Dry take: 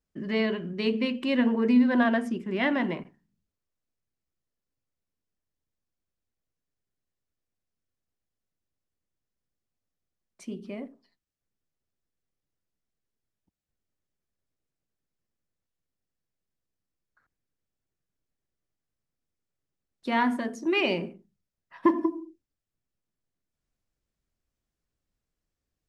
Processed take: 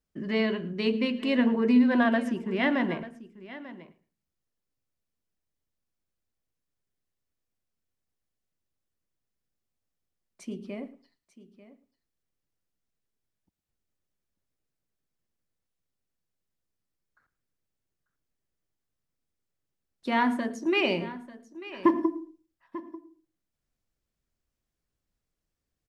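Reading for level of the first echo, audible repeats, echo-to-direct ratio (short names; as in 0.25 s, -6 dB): -20.0 dB, 2, -15.0 dB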